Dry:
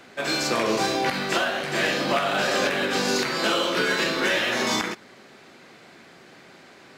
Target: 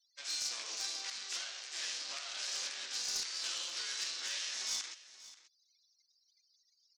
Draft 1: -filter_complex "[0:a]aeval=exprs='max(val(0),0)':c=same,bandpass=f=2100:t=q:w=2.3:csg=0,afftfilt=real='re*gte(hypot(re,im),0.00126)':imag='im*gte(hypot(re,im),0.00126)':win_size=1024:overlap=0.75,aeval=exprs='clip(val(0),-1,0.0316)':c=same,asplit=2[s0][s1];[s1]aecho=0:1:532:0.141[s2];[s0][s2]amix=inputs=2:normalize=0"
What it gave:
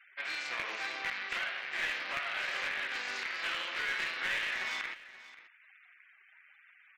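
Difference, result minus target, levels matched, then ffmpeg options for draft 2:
8 kHz band -17.5 dB
-filter_complex "[0:a]aeval=exprs='max(val(0),0)':c=same,bandpass=f=5800:t=q:w=2.3:csg=0,afftfilt=real='re*gte(hypot(re,im),0.00126)':imag='im*gte(hypot(re,im),0.00126)':win_size=1024:overlap=0.75,aeval=exprs='clip(val(0),-1,0.0316)':c=same,asplit=2[s0][s1];[s1]aecho=0:1:532:0.141[s2];[s0][s2]amix=inputs=2:normalize=0"

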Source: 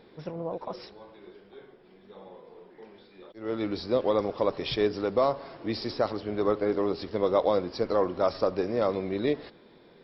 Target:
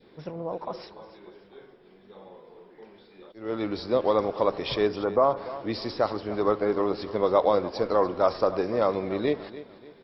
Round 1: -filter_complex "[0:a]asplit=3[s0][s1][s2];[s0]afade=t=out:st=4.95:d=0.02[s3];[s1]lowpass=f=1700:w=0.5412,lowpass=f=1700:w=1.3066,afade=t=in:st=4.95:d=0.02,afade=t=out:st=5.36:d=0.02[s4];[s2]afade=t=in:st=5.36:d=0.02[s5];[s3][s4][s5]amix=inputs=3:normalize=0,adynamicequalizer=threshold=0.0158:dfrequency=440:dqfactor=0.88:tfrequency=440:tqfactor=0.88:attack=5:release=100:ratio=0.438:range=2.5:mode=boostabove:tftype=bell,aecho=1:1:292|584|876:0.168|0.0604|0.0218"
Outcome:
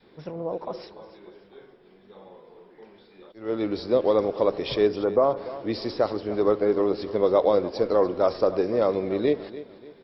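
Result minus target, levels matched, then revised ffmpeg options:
1 kHz band -4.5 dB
-filter_complex "[0:a]asplit=3[s0][s1][s2];[s0]afade=t=out:st=4.95:d=0.02[s3];[s1]lowpass=f=1700:w=0.5412,lowpass=f=1700:w=1.3066,afade=t=in:st=4.95:d=0.02,afade=t=out:st=5.36:d=0.02[s4];[s2]afade=t=in:st=5.36:d=0.02[s5];[s3][s4][s5]amix=inputs=3:normalize=0,adynamicequalizer=threshold=0.0158:dfrequency=1000:dqfactor=0.88:tfrequency=1000:tqfactor=0.88:attack=5:release=100:ratio=0.438:range=2.5:mode=boostabove:tftype=bell,aecho=1:1:292|584|876:0.168|0.0604|0.0218"

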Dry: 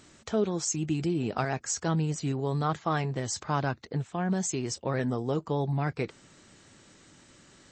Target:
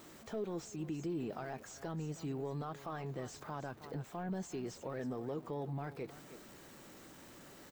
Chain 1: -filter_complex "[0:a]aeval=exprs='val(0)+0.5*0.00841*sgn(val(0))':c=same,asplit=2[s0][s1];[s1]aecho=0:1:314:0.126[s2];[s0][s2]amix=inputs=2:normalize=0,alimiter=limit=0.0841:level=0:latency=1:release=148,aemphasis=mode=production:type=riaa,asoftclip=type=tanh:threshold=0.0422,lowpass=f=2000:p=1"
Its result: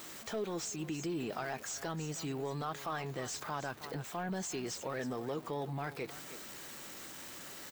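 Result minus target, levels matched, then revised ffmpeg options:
2 kHz band +6.0 dB
-filter_complex "[0:a]aeval=exprs='val(0)+0.5*0.00841*sgn(val(0))':c=same,asplit=2[s0][s1];[s1]aecho=0:1:314:0.126[s2];[s0][s2]amix=inputs=2:normalize=0,alimiter=limit=0.0841:level=0:latency=1:release=148,aemphasis=mode=production:type=riaa,asoftclip=type=tanh:threshold=0.0422,lowpass=f=510:p=1"

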